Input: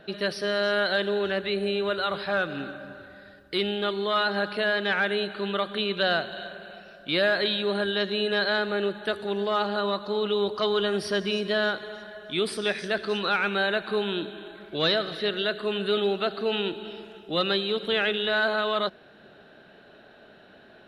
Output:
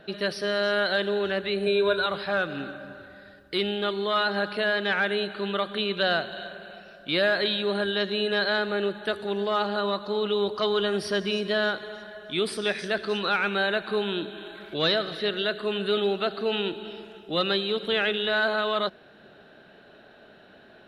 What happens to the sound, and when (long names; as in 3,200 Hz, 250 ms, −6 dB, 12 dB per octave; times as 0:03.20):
0:01.66–0:02.06: EQ curve with evenly spaced ripples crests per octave 1.6, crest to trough 13 dB
0:12.79–0:14.74: one half of a high-frequency compander encoder only